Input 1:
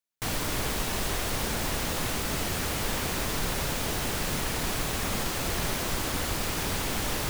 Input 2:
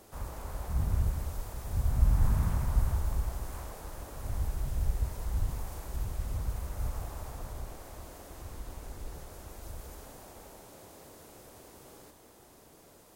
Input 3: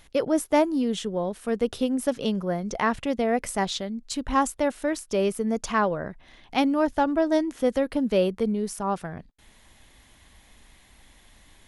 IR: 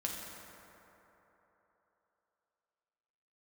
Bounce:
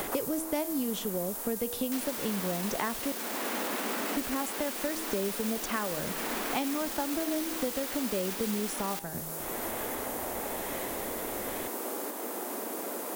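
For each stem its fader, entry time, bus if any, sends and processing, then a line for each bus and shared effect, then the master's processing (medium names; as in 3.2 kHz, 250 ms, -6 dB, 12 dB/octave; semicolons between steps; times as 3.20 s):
-3.5 dB, 1.70 s, bus A, no send, none
-2.5 dB, 0.00 s, bus A, no send, treble shelf 6.3 kHz +10.5 dB
+0.5 dB, 0.00 s, muted 3.12–4.16 s, no bus, no send, de-hum 160.3 Hz, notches 35; compression 1.5:1, threshold -40 dBFS, peak gain reduction 9 dB; rotary cabinet horn 1 Hz
bus A: 0.0 dB, brick-wall FIR high-pass 200 Hz; peak limiter -31 dBFS, peak gain reduction 9 dB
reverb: none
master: treble shelf 10 kHz +9 dB; three bands compressed up and down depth 100%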